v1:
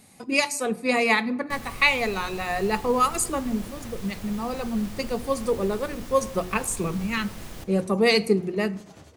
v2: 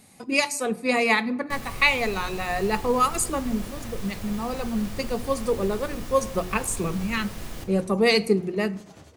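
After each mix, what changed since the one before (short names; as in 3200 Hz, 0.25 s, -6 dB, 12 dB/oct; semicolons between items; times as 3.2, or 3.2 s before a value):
first sound: send +9.0 dB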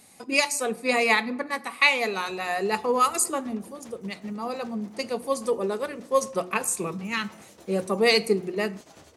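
first sound: muted; master: add tone controls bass -8 dB, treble +2 dB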